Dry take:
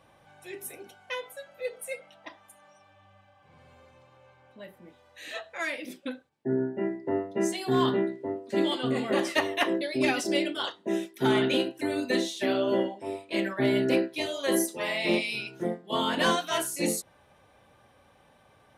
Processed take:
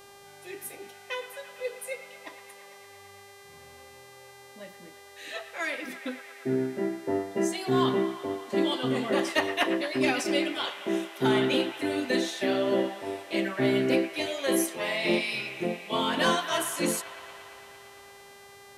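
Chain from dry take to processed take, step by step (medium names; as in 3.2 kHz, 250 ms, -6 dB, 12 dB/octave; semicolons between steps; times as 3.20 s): mains buzz 400 Hz, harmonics 34, -52 dBFS -4 dB/octave; feedback echo behind a band-pass 114 ms, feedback 81%, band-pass 1.6 kHz, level -11 dB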